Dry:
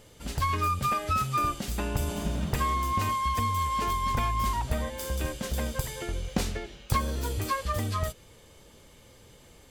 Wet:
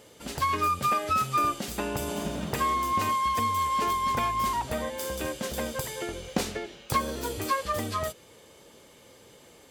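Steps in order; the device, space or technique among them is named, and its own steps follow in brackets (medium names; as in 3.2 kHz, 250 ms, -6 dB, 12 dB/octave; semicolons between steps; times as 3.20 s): filter by subtraction (in parallel: low-pass 380 Hz 12 dB/octave + polarity flip); on the sum: trim +1.5 dB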